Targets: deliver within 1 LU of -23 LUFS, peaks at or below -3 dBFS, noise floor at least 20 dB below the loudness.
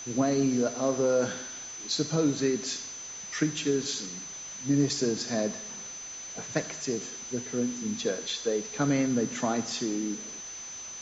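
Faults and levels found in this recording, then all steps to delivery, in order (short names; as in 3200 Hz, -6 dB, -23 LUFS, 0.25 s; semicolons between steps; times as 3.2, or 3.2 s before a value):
steady tone 6100 Hz; tone level -39 dBFS; noise floor -41 dBFS; noise floor target -50 dBFS; loudness -30.0 LUFS; peak -12.5 dBFS; loudness target -23.0 LUFS
-> notch 6100 Hz, Q 30; denoiser 9 dB, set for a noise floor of -41 dBFS; gain +7 dB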